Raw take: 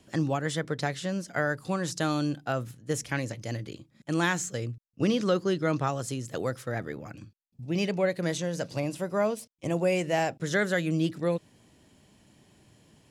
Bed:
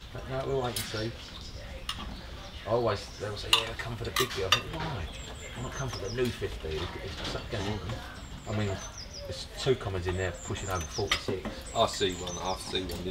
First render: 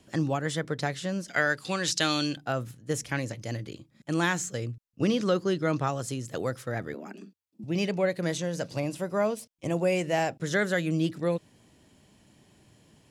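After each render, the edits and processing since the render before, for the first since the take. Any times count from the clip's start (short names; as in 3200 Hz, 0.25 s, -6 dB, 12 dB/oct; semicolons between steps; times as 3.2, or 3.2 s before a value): 1.28–2.37 weighting filter D; 6.94–7.64 frequency shift +88 Hz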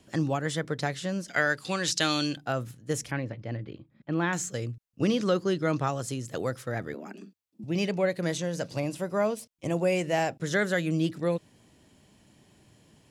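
3.11–4.33 air absorption 370 m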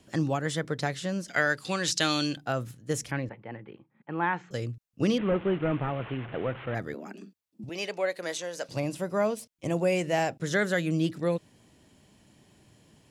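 3.29–4.51 speaker cabinet 220–2700 Hz, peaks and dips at 290 Hz -8 dB, 610 Hz -7 dB, 870 Hz +9 dB; 5.18–6.75 delta modulation 16 kbps, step -36 dBFS; 7.69–8.69 HPF 500 Hz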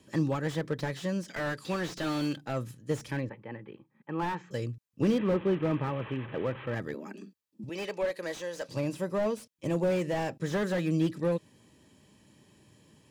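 notch comb 710 Hz; slew limiter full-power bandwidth 33 Hz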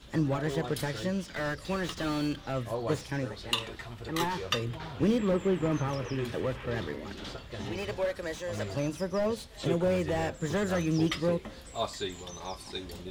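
add bed -6.5 dB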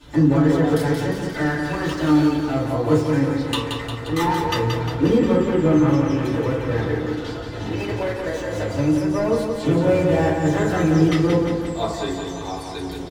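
feedback echo 0.177 s, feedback 58%, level -5.5 dB; FDN reverb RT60 0.52 s, low-frequency decay 1.2×, high-frequency decay 0.35×, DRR -7 dB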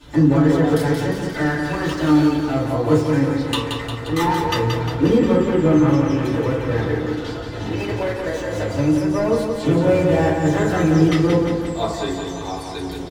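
gain +1.5 dB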